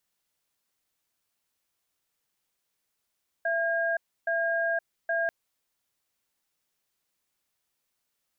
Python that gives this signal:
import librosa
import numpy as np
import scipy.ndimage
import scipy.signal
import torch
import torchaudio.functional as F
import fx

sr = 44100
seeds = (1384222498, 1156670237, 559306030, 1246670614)

y = fx.cadence(sr, length_s=1.84, low_hz=669.0, high_hz=1620.0, on_s=0.52, off_s=0.3, level_db=-27.0)